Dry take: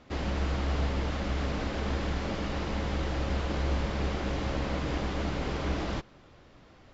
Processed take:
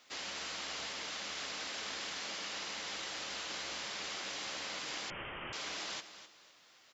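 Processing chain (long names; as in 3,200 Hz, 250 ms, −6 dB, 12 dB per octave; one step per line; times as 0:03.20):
high-pass filter 110 Hz 6 dB per octave
first difference
repeating echo 255 ms, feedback 28%, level −12.5 dB
0:05.10–0:05.53: voice inversion scrambler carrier 3,400 Hz
level +8.5 dB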